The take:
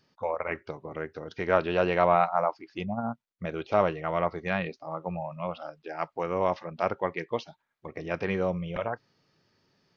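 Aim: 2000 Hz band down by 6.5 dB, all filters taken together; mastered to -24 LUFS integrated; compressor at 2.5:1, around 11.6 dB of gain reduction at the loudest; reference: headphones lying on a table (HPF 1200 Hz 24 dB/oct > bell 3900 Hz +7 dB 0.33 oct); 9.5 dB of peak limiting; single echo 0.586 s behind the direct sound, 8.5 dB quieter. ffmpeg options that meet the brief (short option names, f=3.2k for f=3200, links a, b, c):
-af "equalizer=f=2k:t=o:g=-8.5,acompressor=threshold=-36dB:ratio=2.5,alimiter=level_in=4.5dB:limit=-24dB:level=0:latency=1,volume=-4.5dB,highpass=f=1.2k:w=0.5412,highpass=f=1.2k:w=1.3066,equalizer=f=3.9k:t=o:w=0.33:g=7,aecho=1:1:586:0.376,volume=29dB"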